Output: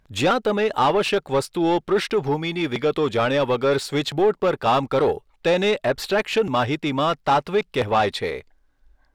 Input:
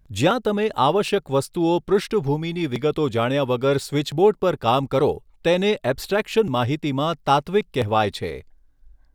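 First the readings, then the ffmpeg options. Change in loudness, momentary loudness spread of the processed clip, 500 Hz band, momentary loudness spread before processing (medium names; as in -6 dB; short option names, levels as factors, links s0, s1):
0.0 dB, 4 LU, 0.0 dB, 5 LU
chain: -filter_complex "[0:a]acontrast=87,asplit=2[s0][s1];[s1]highpass=f=720:p=1,volume=5.01,asoftclip=type=tanh:threshold=0.75[s2];[s0][s2]amix=inputs=2:normalize=0,lowpass=f=3200:p=1,volume=0.501,volume=0.398"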